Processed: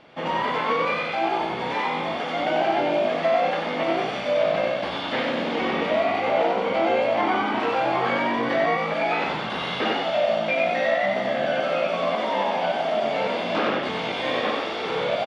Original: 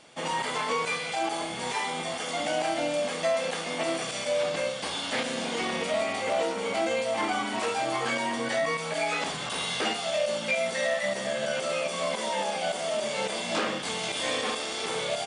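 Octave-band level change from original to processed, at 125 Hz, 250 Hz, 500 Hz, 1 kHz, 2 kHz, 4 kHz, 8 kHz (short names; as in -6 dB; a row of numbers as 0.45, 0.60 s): +5.5 dB, +6.5 dB, +6.0 dB, +7.5 dB, +4.0 dB, 0.0 dB, under -15 dB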